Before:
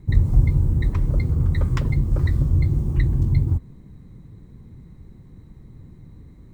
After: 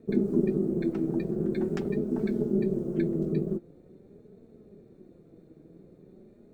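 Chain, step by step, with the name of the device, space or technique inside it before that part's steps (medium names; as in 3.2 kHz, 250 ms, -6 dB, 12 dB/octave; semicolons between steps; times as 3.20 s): alien voice (ring modulator 290 Hz; flange 0.45 Hz, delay 4.4 ms, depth 2 ms, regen +55%); trim -3 dB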